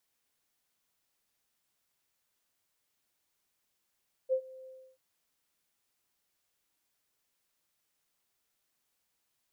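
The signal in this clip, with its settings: ADSR sine 521 Hz, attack 37 ms, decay 79 ms, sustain -22.5 dB, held 0.38 s, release 305 ms -23.5 dBFS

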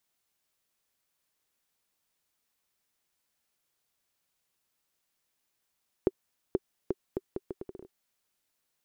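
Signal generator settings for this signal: bouncing ball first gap 0.48 s, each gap 0.74, 381 Hz, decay 37 ms -11.5 dBFS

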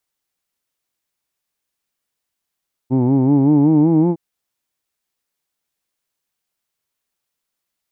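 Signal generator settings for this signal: formant-synthesis vowel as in who'd, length 1.26 s, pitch 124 Hz, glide +5.5 st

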